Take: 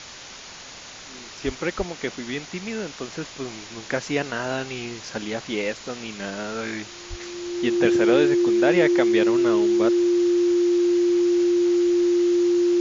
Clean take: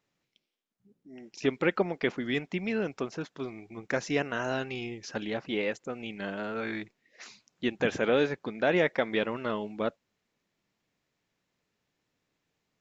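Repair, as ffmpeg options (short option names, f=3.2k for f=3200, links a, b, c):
-filter_complex "[0:a]bandreject=f=350:w=30,asplit=3[a][b][c];[a]afade=t=out:st=1.45:d=0.02[d];[b]highpass=f=140:w=0.5412,highpass=f=140:w=1.3066,afade=t=in:st=1.45:d=0.02,afade=t=out:st=1.57:d=0.02[e];[c]afade=t=in:st=1.57:d=0.02[f];[d][e][f]amix=inputs=3:normalize=0,asplit=3[g][h][i];[g]afade=t=out:st=1.77:d=0.02[j];[h]highpass=f=140:w=0.5412,highpass=f=140:w=1.3066,afade=t=in:st=1.77:d=0.02,afade=t=out:st=1.89:d=0.02[k];[i]afade=t=in:st=1.89:d=0.02[l];[j][k][l]amix=inputs=3:normalize=0,asplit=3[m][n][o];[m]afade=t=out:st=7.09:d=0.02[p];[n]highpass=f=140:w=0.5412,highpass=f=140:w=1.3066,afade=t=in:st=7.09:d=0.02,afade=t=out:st=7.21:d=0.02[q];[o]afade=t=in:st=7.21:d=0.02[r];[p][q][r]amix=inputs=3:normalize=0,afwtdn=0.016,asetnsamples=n=441:p=0,asendcmd='3.08 volume volume -4dB',volume=0dB"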